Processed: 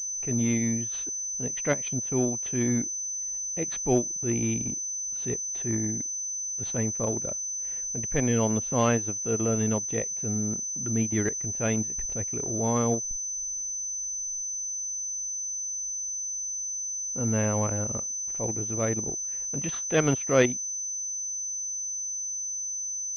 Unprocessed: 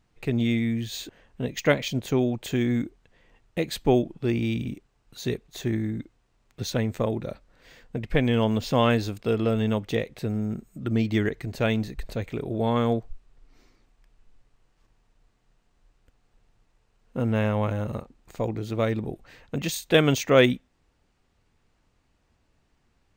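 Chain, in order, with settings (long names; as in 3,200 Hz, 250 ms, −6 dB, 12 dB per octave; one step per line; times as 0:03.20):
transient designer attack −7 dB, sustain −11 dB
switching amplifier with a slow clock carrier 6,100 Hz
level −1 dB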